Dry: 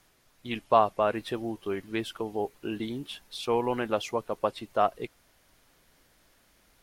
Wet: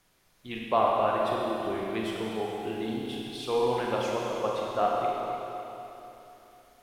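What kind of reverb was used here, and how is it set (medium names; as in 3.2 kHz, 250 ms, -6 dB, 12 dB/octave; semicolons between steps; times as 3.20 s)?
Schroeder reverb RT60 3.3 s, combs from 32 ms, DRR -3.5 dB; trim -4.5 dB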